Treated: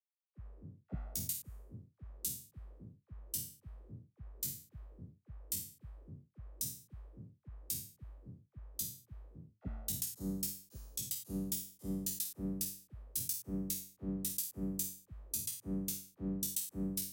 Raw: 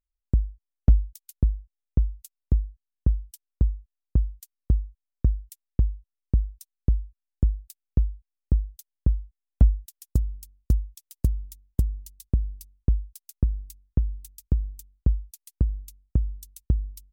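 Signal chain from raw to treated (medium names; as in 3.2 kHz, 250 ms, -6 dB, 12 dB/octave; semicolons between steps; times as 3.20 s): spectral sustain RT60 0.51 s; high-pass 97 Hz 24 dB/octave; expander -58 dBFS; slow attack 285 ms; phase dispersion lows, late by 49 ms, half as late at 440 Hz; three bands expanded up and down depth 40%; trim +5.5 dB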